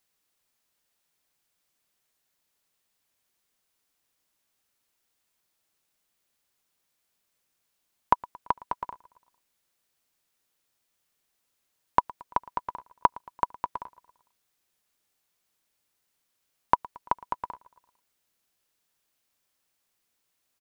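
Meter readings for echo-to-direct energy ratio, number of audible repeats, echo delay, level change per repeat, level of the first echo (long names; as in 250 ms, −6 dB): −20.5 dB, 3, 113 ms, −4.5 dB, −22.0 dB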